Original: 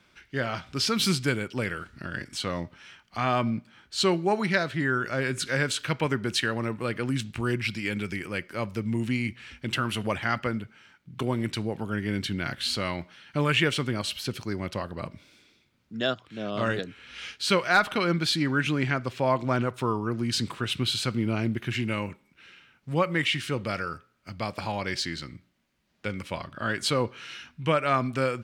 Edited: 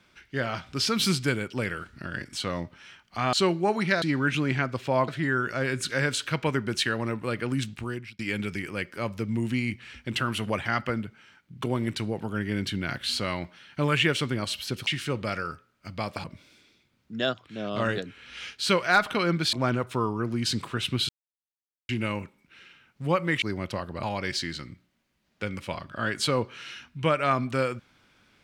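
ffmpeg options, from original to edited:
ffmpeg -i in.wav -filter_complex "[0:a]asplit=12[link_01][link_02][link_03][link_04][link_05][link_06][link_07][link_08][link_09][link_10][link_11][link_12];[link_01]atrim=end=3.332[link_13];[link_02]atrim=start=3.958:end=4.652[link_14];[link_03]atrim=start=18.338:end=19.402[link_15];[link_04]atrim=start=4.648:end=7.76,asetpts=PTS-STARTPTS,afade=type=out:start_time=2.562:duration=0.55[link_16];[link_05]atrim=start=7.76:end=14.442,asetpts=PTS-STARTPTS,afade=type=in:duration=0.004:curve=hsin[link_17];[link_06]atrim=start=23.288:end=24.662[link_18];[link_07]atrim=start=15.048:end=18.342[link_19];[link_08]atrim=start=19.398:end=20.96,asetpts=PTS-STARTPTS,afade=type=out:start_time=1.558:duration=0.004:curve=hsin[link_20];[link_09]atrim=start=20.96:end=21.76,asetpts=PTS-STARTPTS,volume=0[link_21];[link_10]atrim=start=21.76:end=23.292,asetpts=PTS-STARTPTS,afade=type=in:duration=0.004:curve=hsin[link_22];[link_11]atrim=start=14.438:end=15.052[link_23];[link_12]atrim=start=24.658[link_24];[link_13][link_14]acrossfade=duration=0.004:curve1=hsin:curve2=hsin[link_25];[link_25][link_15]acrossfade=duration=0.004:curve1=hsin:curve2=hsin[link_26];[link_16][link_17]concat=n=2:v=0:a=1[link_27];[link_26][link_27]acrossfade=duration=0.004:curve1=hsin:curve2=hsin[link_28];[link_28][link_18]acrossfade=duration=0.004:curve1=hsin:curve2=hsin[link_29];[link_29][link_19]acrossfade=duration=0.004:curve1=hsin:curve2=hsin[link_30];[link_20][link_21][link_22]concat=n=3:v=0:a=1[link_31];[link_30][link_31]acrossfade=duration=0.004:curve1=hsin:curve2=hsin[link_32];[link_32][link_23]acrossfade=duration=0.004:curve1=hsin:curve2=hsin[link_33];[link_33][link_24]acrossfade=duration=0.004:curve1=hsin:curve2=hsin" out.wav

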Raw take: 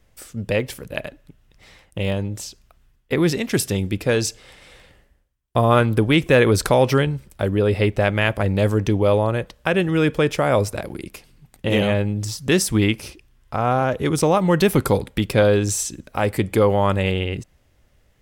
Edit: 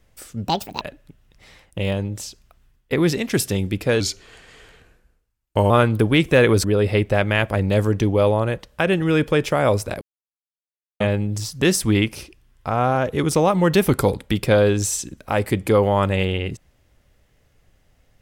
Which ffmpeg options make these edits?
ffmpeg -i in.wav -filter_complex "[0:a]asplit=8[link_01][link_02][link_03][link_04][link_05][link_06][link_07][link_08];[link_01]atrim=end=0.474[link_09];[link_02]atrim=start=0.47:end=1.01,asetpts=PTS-STARTPTS,asetrate=69678,aresample=44100,atrim=end_sample=15072,asetpts=PTS-STARTPTS[link_10];[link_03]atrim=start=1.006:end=4.204[link_11];[link_04]atrim=start=4.2:end=5.68,asetpts=PTS-STARTPTS,asetrate=38367,aresample=44100[link_12];[link_05]atrim=start=5.676:end=6.622[link_13];[link_06]atrim=start=7.508:end=10.88,asetpts=PTS-STARTPTS,afade=type=out:start_time=3.368:duration=0.004:curve=hsin[link_14];[link_07]atrim=start=10.88:end=11.87,asetpts=PTS-STARTPTS,volume=0[link_15];[link_08]atrim=start=11.87,asetpts=PTS-STARTPTS,afade=type=in:duration=0.004:curve=hsin[link_16];[link_09][link_10]acrossfade=duration=0.004:curve1=hsin:curve2=hsin[link_17];[link_17][link_11]acrossfade=duration=0.004:curve1=hsin:curve2=hsin[link_18];[link_18][link_12]acrossfade=duration=0.004:curve1=hsin:curve2=hsin[link_19];[link_19][link_13]acrossfade=duration=0.004:curve1=hsin:curve2=hsin[link_20];[link_14][link_15][link_16]concat=n=3:v=0:a=1[link_21];[link_20][link_21]acrossfade=duration=0.004:curve1=hsin:curve2=hsin" out.wav

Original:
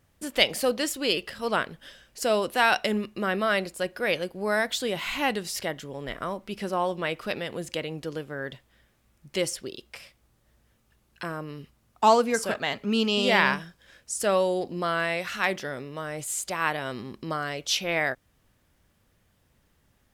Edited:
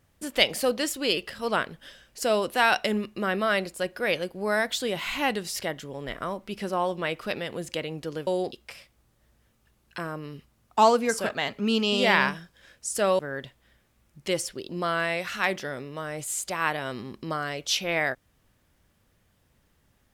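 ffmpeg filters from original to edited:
ffmpeg -i in.wav -filter_complex "[0:a]asplit=5[link_01][link_02][link_03][link_04][link_05];[link_01]atrim=end=8.272[link_06];[link_02]atrim=start=14.438:end=14.692[link_07];[link_03]atrim=start=9.768:end=14.442[link_08];[link_04]atrim=start=8.268:end=9.772[link_09];[link_05]atrim=start=14.688[link_10];[link_06][link_07]acrossfade=duration=0.004:curve1=hsin:curve2=hsin[link_11];[link_11][link_08]acrossfade=duration=0.004:curve1=hsin:curve2=hsin[link_12];[link_12][link_09]acrossfade=duration=0.004:curve1=hsin:curve2=hsin[link_13];[link_13][link_10]acrossfade=duration=0.004:curve1=hsin:curve2=hsin" out.wav

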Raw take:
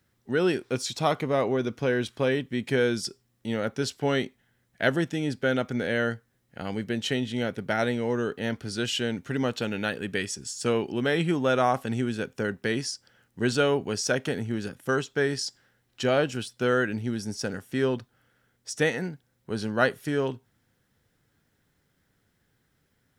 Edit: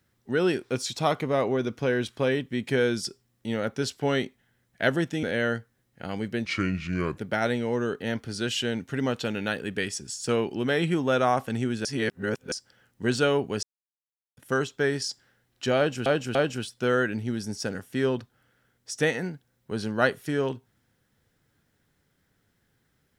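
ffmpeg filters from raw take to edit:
ffmpeg -i in.wav -filter_complex "[0:a]asplit=10[link_01][link_02][link_03][link_04][link_05][link_06][link_07][link_08][link_09][link_10];[link_01]atrim=end=5.232[link_11];[link_02]atrim=start=5.788:end=7.014[link_12];[link_03]atrim=start=7.01:end=7.55,asetpts=PTS-STARTPTS,asetrate=32634,aresample=44100,atrim=end_sample=32181,asetpts=PTS-STARTPTS[link_13];[link_04]atrim=start=7.546:end=12.222[link_14];[link_05]atrim=start=12.218:end=12.892,asetpts=PTS-STARTPTS,areverse[link_15];[link_06]atrim=start=12.888:end=14,asetpts=PTS-STARTPTS,afade=type=out:start_time=1.108:duration=0.004:curve=hsin[link_16];[link_07]atrim=start=14:end=14.74,asetpts=PTS-STARTPTS,volume=0[link_17];[link_08]atrim=start=14.74:end=16.432,asetpts=PTS-STARTPTS,afade=type=in:duration=0.004:curve=hsin[link_18];[link_09]atrim=start=16.138:end=16.432[link_19];[link_10]atrim=start=16.138[link_20];[link_11][link_12]acrossfade=duration=0.004:curve1=hsin:curve2=hsin[link_21];[link_21][link_13]acrossfade=duration=0.004:curve1=hsin:curve2=hsin[link_22];[link_22][link_14]acrossfade=duration=0.004:curve1=hsin:curve2=hsin[link_23];[link_23][link_15]acrossfade=duration=0.004:curve1=hsin:curve2=hsin[link_24];[link_16][link_17][link_18]concat=n=3:v=0:a=1[link_25];[link_24][link_25]acrossfade=duration=0.004:curve1=hsin:curve2=hsin[link_26];[link_26][link_19]acrossfade=duration=0.004:curve1=hsin:curve2=hsin[link_27];[link_27][link_20]acrossfade=duration=0.004:curve1=hsin:curve2=hsin" out.wav

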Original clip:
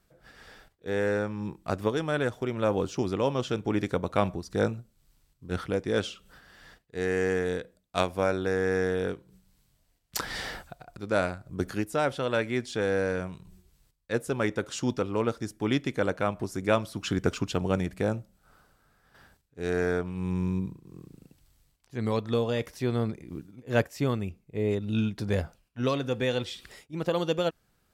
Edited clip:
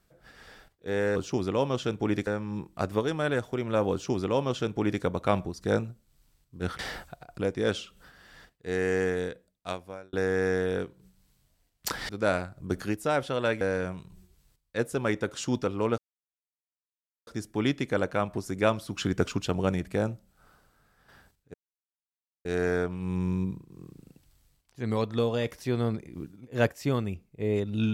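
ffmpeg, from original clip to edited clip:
ffmpeg -i in.wav -filter_complex "[0:a]asplit=10[link_01][link_02][link_03][link_04][link_05][link_06][link_07][link_08][link_09][link_10];[link_01]atrim=end=1.162[link_11];[link_02]atrim=start=2.808:end=3.922[link_12];[link_03]atrim=start=1.158:end=5.682[link_13];[link_04]atrim=start=10.378:end=10.982[link_14];[link_05]atrim=start=5.678:end=8.42,asetpts=PTS-STARTPTS,afade=type=out:start_time=1.682:duration=1.06[link_15];[link_06]atrim=start=8.42:end=10.382,asetpts=PTS-STARTPTS,afade=type=in:duration=0.004:curve=hsin[link_16];[link_07]atrim=start=10.978:end=12.502[link_17];[link_08]atrim=start=12.958:end=15.33,asetpts=PTS-STARTPTS,afade=type=out:start_time=2.368:duration=0.004:curve=hsin,apad=pad_dur=1.29[link_18];[link_09]atrim=start=15.33:end=19.6,asetpts=PTS-STARTPTS,afade=type=in:duration=0.004:curve=hsin,afade=type=out:start_time=4.266:duration=0.004:curve=hsin,apad=pad_dur=0.91[link_19];[link_10]atrim=start=19.6,asetpts=PTS-STARTPTS,afade=type=in:duration=0.004:curve=hsin[link_20];[link_11][link_12]acrossfade=duration=0.004:curve1=hsin:curve2=hsin[link_21];[link_21][link_13]acrossfade=duration=0.004:curve1=hsin:curve2=hsin[link_22];[link_22][link_14]acrossfade=duration=0.004:curve1=hsin:curve2=hsin[link_23];[link_15][link_16]concat=n=2:v=0:a=1[link_24];[link_23][link_24]acrossfade=duration=0.004:curve1=hsin:curve2=hsin[link_25];[link_25][link_17]acrossfade=duration=0.004:curve1=hsin:curve2=hsin[link_26];[link_18][link_19][link_20]concat=n=3:v=0:a=1[link_27];[link_26][link_27]acrossfade=duration=0.004:curve1=hsin:curve2=hsin" out.wav

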